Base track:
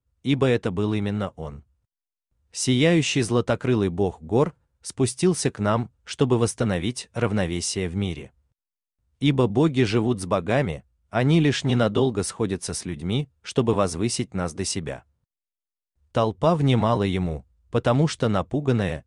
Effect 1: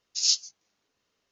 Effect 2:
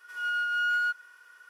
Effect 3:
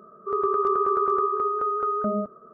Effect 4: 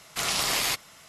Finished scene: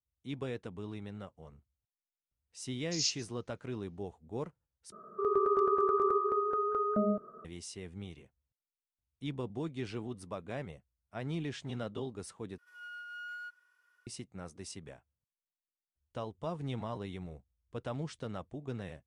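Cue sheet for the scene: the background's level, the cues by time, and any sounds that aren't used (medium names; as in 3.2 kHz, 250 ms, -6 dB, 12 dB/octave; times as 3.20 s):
base track -18.5 dB
2.76 s: add 1 -9.5 dB
4.92 s: replace with 3 -2.5 dB + dynamic bell 1.2 kHz, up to -5 dB, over -37 dBFS, Q 0.89
12.58 s: replace with 2 -17 dB
not used: 4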